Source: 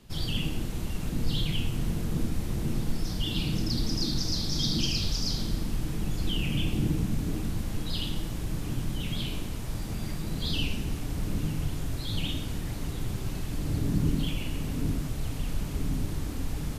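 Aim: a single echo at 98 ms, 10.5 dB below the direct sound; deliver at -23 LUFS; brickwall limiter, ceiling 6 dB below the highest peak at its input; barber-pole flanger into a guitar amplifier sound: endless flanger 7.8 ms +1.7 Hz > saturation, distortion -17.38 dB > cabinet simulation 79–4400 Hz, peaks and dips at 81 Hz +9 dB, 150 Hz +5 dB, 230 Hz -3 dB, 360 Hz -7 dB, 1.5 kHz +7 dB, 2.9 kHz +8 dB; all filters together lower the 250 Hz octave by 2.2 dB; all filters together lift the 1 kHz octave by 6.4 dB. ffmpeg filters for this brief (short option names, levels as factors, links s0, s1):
-filter_complex "[0:a]equalizer=f=250:t=o:g=-4,equalizer=f=1000:t=o:g=7,alimiter=limit=0.0891:level=0:latency=1,aecho=1:1:98:0.299,asplit=2[s0][s1];[s1]adelay=7.8,afreqshift=1.7[s2];[s0][s2]amix=inputs=2:normalize=1,asoftclip=threshold=0.0447,highpass=79,equalizer=f=81:t=q:w=4:g=9,equalizer=f=150:t=q:w=4:g=5,equalizer=f=230:t=q:w=4:g=-3,equalizer=f=360:t=q:w=4:g=-7,equalizer=f=1500:t=q:w=4:g=7,equalizer=f=2900:t=q:w=4:g=8,lowpass=f=4400:w=0.5412,lowpass=f=4400:w=1.3066,volume=4.47"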